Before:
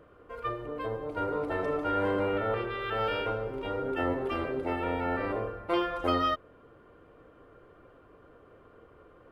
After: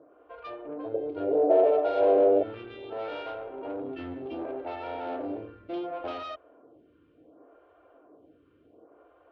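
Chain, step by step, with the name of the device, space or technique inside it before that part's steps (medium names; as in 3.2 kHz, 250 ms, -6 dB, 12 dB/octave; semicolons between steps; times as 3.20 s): vibe pedal into a guitar amplifier (lamp-driven phase shifter 0.68 Hz; valve stage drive 33 dB, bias 0.45; cabinet simulation 85–4000 Hz, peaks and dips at 120 Hz -7 dB, 190 Hz -8 dB, 300 Hz +9 dB, 680 Hz +10 dB, 1.2 kHz -4 dB, 1.9 kHz -7 dB); 0.94–2.43 s: high-order bell 520 Hz +14.5 dB 1.3 oct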